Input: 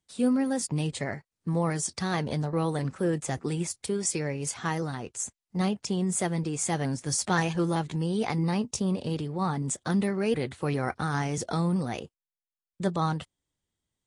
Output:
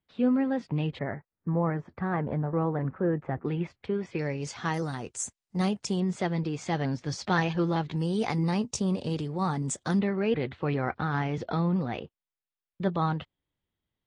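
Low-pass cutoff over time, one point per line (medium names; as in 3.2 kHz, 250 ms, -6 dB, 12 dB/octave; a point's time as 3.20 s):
low-pass 24 dB/octave
3.1 kHz
from 0.99 s 1.8 kHz
from 3.45 s 2.8 kHz
from 4.19 s 5.7 kHz
from 4.74 s 9.4 kHz
from 6.00 s 4.7 kHz
from 7.96 s 8.3 kHz
from 9.99 s 3.6 kHz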